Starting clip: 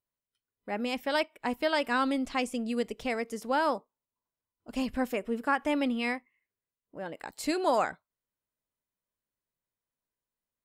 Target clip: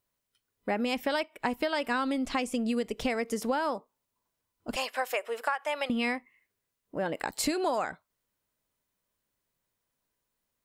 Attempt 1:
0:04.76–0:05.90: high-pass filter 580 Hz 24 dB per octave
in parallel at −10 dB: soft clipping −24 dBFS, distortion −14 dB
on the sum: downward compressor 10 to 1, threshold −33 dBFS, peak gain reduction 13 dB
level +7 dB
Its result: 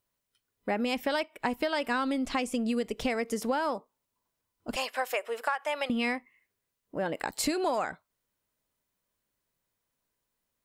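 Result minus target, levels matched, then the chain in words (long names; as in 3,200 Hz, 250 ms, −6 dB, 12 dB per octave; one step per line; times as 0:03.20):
soft clipping: distortion +13 dB
0:04.76–0:05.90: high-pass filter 580 Hz 24 dB per octave
in parallel at −10 dB: soft clipping −15 dBFS, distortion −27 dB
on the sum: downward compressor 10 to 1, threshold −33 dBFS, peak gain reduction 13.5 dB
level +7 dB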